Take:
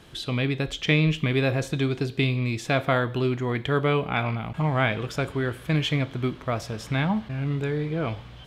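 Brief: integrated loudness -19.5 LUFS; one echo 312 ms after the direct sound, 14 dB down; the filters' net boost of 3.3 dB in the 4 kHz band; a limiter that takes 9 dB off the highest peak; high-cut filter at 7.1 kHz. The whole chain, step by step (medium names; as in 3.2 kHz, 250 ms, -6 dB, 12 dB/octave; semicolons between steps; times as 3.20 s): low-pass 7.1 kHz; peaking EQ 4 kHz +4.5 dB; peak limiter -15.5 dBFS; delay 312 ms -14 dB; trim +7 dB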